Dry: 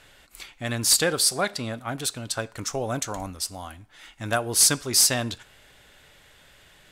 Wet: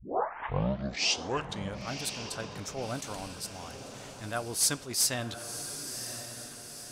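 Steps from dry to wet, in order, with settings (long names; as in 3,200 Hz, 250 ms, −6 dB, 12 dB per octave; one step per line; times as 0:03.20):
turntable start at the beginning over 1.90 s
feedback delay with all-pass diffusion 1,035 ms, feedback 52%, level −10 dB
level that may rise only so fast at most 160 dB per second
level −7.5 dB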